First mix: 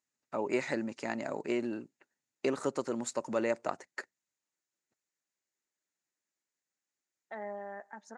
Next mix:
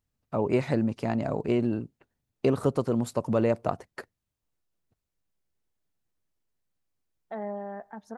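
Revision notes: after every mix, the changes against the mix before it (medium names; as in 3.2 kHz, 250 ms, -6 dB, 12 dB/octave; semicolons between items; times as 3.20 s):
master: remove cabinet simulation 400–8400 Hz, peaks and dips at 460 Hz -7 dB, 700 Hz -7 dB, 1.1 kHz -5 dB, 1.9 kHz +4 dB, 3.2 kHz -5 dB, 6.9 kHz +9 dB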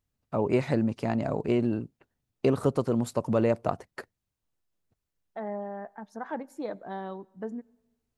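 second voice: entry -1.95 s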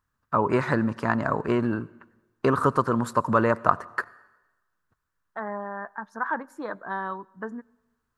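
first voice: send on; master: add high-order bell 1.3 kHz +15 dB 1.1 oct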